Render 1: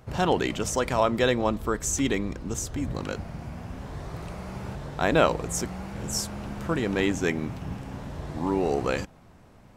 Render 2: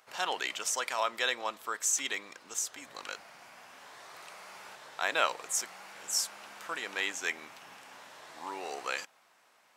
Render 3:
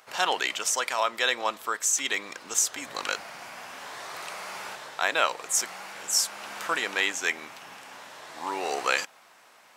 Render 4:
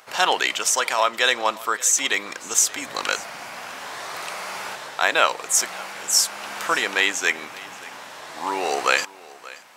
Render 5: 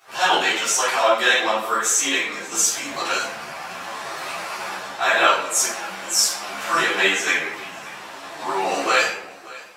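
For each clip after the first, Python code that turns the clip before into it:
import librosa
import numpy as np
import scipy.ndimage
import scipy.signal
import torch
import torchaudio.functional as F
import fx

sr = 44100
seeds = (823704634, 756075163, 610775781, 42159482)

y1 = scipy.signal.sosfilt(scipy.signal.bessel(2, 1400.0, 'highpass', norm='mag', fs=sr, output='sos'), x)
y2 = fx.rider(y1, sr, range_db=4, speed_s=0.5)
y2 = F.gain(torch.from_numpy(y2), 7.0).numpy()
y3 = y2 + 10.0 ** (-20.5 / 20.0) * np.pad(y2, (int(578 * sr / 1000.0), 0))[:len(y2)]
y3 = F.gain(torch.from_numpy(y3), 6.0).numpy()
y4 = fx.room_shoebox(y3, sr, seeds[0], volume_m3=160.0, walls='mixed', distance_m=3.5)
y4 = fx.ensemble(y4, sr)
y4 = F.gain(torch.from_numpy(y4), -6.5).numpy()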